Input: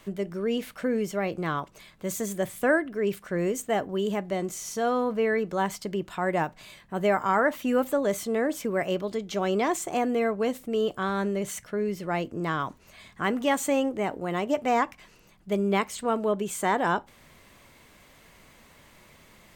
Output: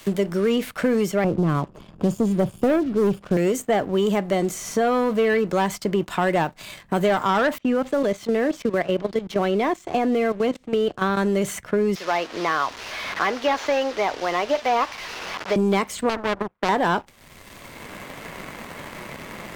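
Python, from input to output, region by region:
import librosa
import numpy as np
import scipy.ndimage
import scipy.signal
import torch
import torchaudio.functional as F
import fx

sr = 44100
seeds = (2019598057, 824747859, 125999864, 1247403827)

y = fx.chain(x, sr, fx.moving_average(points=22),
    fx.low_shelf(hz=260.0, db=11.0), at=(1.24, 3.37))
y = fx.chain(y, sr, fx.level_steps(step_db=14),
    fx.air_absorb(metres=140.0), at=(7.58, 11.17))
y = fx.chain(y, sr, fx.delta_mod(bps=32000, step_db=-37.0),
    fx.highpass(hz=590.0, slope=12), at=(11.95, 15.56))
y = fx.chain(y, sr, fx.cheby2_lowpass(hz=4300.0, order=4, stop_db=60),
    fx.power_curve(exponent=2.0),
    fx.spectral_comp(ratio=2.0), at=(16.09, 16.69))
y = fx.leveller(y, sr, passes=2)
y = fx.band_squash(y, sr, depth_pct=70)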